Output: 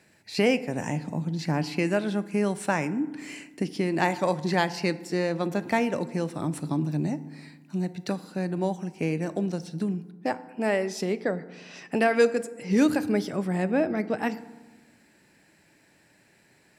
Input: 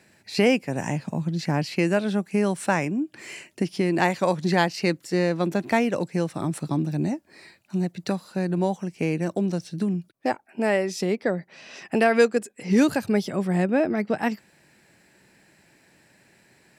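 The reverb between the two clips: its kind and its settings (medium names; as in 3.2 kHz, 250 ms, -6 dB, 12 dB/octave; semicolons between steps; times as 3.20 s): FDN reverb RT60 1.2 s, low-frequency decay 1.4×, high-frequency decay 0.5×, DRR 13 dB; trim -3 dB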